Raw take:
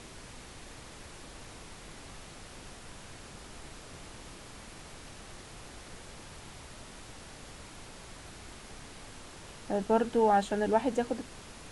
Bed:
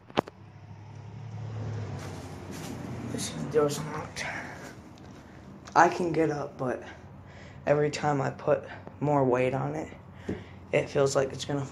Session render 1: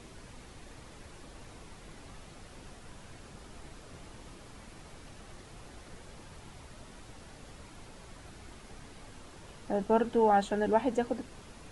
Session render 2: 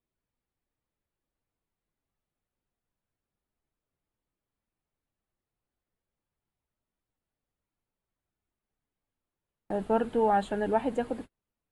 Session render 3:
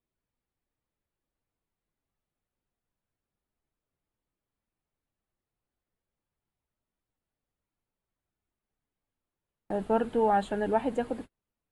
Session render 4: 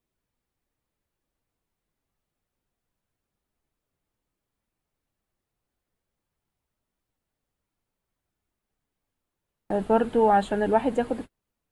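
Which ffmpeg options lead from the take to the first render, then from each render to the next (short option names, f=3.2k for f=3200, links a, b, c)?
-af "afftdn=nr=6:nf=-49"
-af "equalizer=f=5.8k:t=o:w=0.61:g=-12.5,agate=range=-40dB:threshold=-39dB:ratio=16:detection=peak"
-af anull
-af "volume=5dB"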